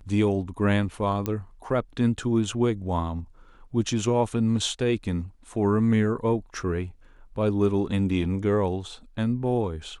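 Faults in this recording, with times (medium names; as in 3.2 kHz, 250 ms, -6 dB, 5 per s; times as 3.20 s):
1.26 s: pop -13 dBFS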